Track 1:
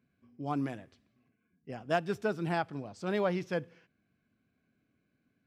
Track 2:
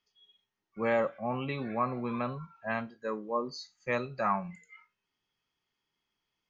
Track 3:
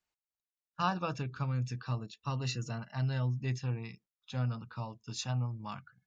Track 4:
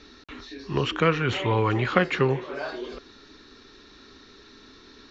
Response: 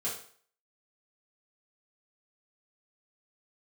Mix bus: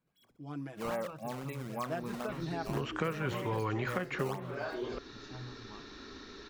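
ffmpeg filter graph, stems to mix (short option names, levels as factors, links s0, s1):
-filter_complex "[0:a]aecho=1:1:6.2:0.81,volume=0.335[s0];[1:a]acrusher=samples=15:mix=1:aa=0.000001:lfo=1:lforange=24:lforate=3.8,volume=0.473,asplit=2[s1][s2];[2:a]lowpass=3200,adelay=50,volume=0.266[s3];[3:a]adelay=2000,volume=1.33[s4];[s2]apad=whole_len=313295[s5];[s4][s5]sidechaincompress=threshold=0.00891:ratio=8:attack=16:release=1030[s6];[s0][s1][s3][s6]amix=inputs=4:normalize=0,bandreject=f=60:t=h:w=6,bandreject=f=120:t=h:w=6,acrossover=split=2400|5300[s7][s8][s9];[s7]acompressor=threshold=0.0282:ratio=4[s10];[s8]acompressor=threshold=0.00112:ratio=4[s11];[s9]acompressor=threshold=0.00224:ratio=4[s12];[s10][s11][s12]amix=inputs=3:normalize=0"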